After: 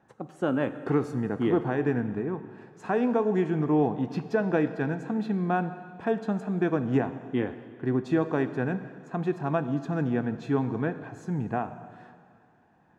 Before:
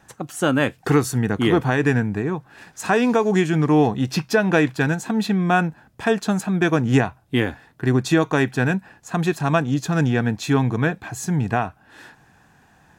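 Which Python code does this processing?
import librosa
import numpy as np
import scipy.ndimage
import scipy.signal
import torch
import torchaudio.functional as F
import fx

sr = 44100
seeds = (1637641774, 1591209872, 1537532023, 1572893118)

y = fx.bandpass_q(x, sr, hz=390.0, q=0.5)
y = fx.rev_plate(y, sr, seeds[0], rt60_s=2.1, hf_ratio=1.0, predelay_ms=0, drr_db=10.5)
y = F.gain(torch.from_numpy(y), -6.0).numpy()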